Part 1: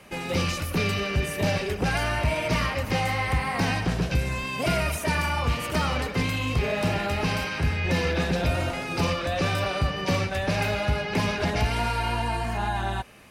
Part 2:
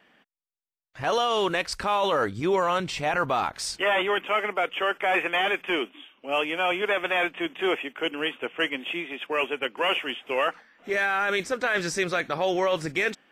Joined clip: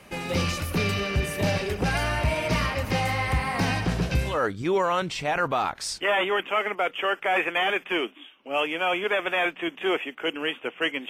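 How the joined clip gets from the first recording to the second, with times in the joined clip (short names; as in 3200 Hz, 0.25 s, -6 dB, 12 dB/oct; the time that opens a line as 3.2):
part 1
4.32 switch to part 2 from 2.1 s, crossfade 0.16 s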